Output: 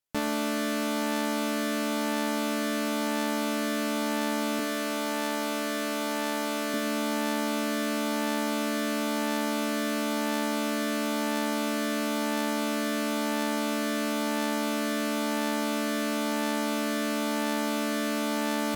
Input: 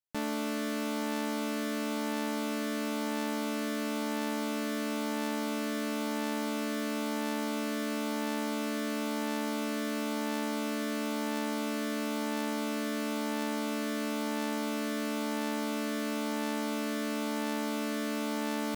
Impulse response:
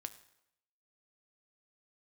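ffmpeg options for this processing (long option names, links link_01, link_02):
-filter_complex "[0:a]asettb=1/sr,asplit=3[link_01][link_02][link_03];[link_01]atrim=end=4.594[link_04];[link_02]atrim=start=4.59:end=6.74,asetpts=PTS-STARTPTS,afade=type=in:duration=0.004:curve=qsin,afade=type=out:start_time=2.146:duration=0.004:curve=qsin,highpass=270[link_05];[link_03]atrim=start=6.736[link_06];[link_04][link_05]acrossfade=duration=0.004:curve1=hsin:curve2=qsin[link_07];[link_07][link_06]acrossfade=duration=0.004:curve1=qsin:curve2=hsin[link_08];[1:a]atrim=start_sample=2205,afade=type=out:start_time=0.19:duration=0.01,atrim=end_sample=8820,asetrate=35721,aresample=44100[link_09];[link_08][link_09]afir=irnorm=-1:irlink=0,volume=8.5dB"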